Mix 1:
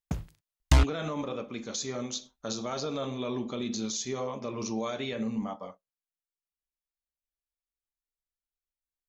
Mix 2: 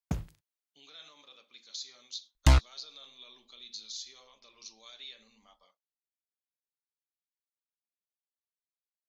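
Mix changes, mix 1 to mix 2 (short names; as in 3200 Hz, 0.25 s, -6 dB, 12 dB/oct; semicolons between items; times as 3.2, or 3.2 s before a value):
speech: add band-pass 4200 Hz, Q 3.4; second sound: entry +1.75 s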